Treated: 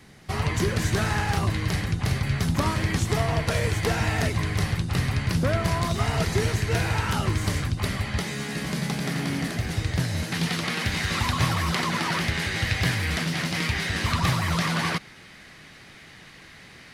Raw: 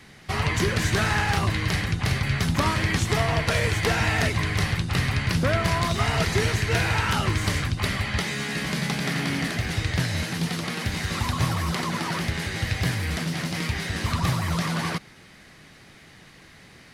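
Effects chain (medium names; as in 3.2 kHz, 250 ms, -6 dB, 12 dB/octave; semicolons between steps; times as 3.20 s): peaking EQ 2.4 kHz -5 dB 2.5 oct, from 10.32 s +4 dB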